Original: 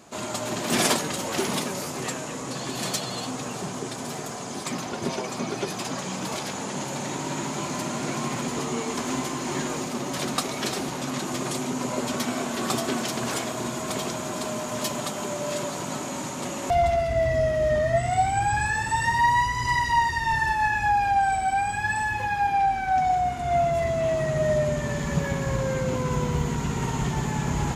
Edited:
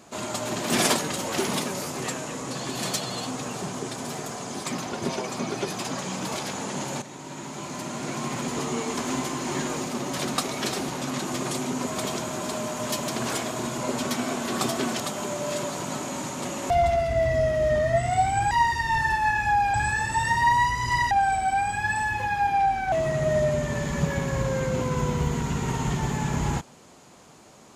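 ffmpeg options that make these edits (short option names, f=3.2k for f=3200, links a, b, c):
-filter_complex "[0:a]asplit=10[a][b][c][d][e][f][g][h][i][j];[a]atrim=end=7.02,asetpts=PTS-STARTPTS,afade=t=out:st=7.016:d=0.004:c=hsin:silence=0.251189[k];[b]atrim=start=7.02:end=11.872,asetpts=PTS-STARTPTS,afade=t=in:d=1.6:silence=0.251189[l];[c]atrim=start=13.788:end=15.002[m];[d]atrim=start=13.088:end=13.792[n];[e]atrim=start=11.868:end=13.092[o];[f]atrim=start=14.998:end=18.512[p];[g]atrim=start=19.878:end=21.112[q];[h]atrim=start=18.508:end=19.882[r];[i]atrim=start=21.108:end=22.922[s];[j]atrim=start=24.058[t];[k][l]concat=n=2:v=0:a=1[u];[u][m]acrossfade=d=0.004:c1=hsin:c2=hsin[v];[v][n]acrossfade=d=0.004:c1=hsin:c2=hsin[w];[w][o]acrossfade=d=0.004:c1=hsin:c2=hsin[x];[x][p]acrossfade=d=0.004:c1=hsin:c2=hsin[y];[y][q]acrossfade=d=0.004:c1=hsin:c2=hsin[z];[z][r]acrossfade=d=0.004:c1=hsin:c2=hsin[aa];[aa][s]acrossfade=d=0.004:c1=hsin:c2=hsin[ab];[ab][t]acrossfade=d=0.004:c1=hsin:c2=hsin"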